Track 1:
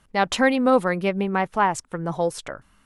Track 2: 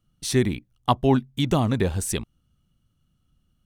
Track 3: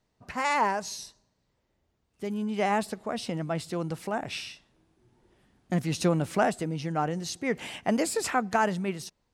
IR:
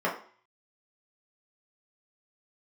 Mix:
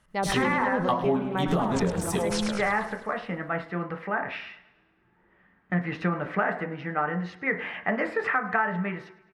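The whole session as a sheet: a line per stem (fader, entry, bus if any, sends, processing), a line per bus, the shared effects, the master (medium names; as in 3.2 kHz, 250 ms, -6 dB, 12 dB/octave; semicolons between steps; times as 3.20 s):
-6.0 dB, 0.00 s, no send, echo send -6.5 dB, low-pass that closes with the level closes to 730 Hz, closed at -15 dBFS; decay stretcher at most 39 dB/s
0.0 dB, 0.00 s, send -11.5 dB, echo send -17 dB, gate with hold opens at -60 dBFS; auto duck -9 dB, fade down 0.30 s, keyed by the first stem
-5.0 dB, 0.00 s, send -11.5 dB, echo send -19 dB, FFT filter 710 Hz 0 dB, 1.8 kHz +13 dB, 8 kHz -28 dB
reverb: on, RT60 0.45 s, pre-delay 3 ms
echo: feedback delay 105 ms, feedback 57%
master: compression 6:1, threshold -21 dBFS, peak gain reduction 10 dB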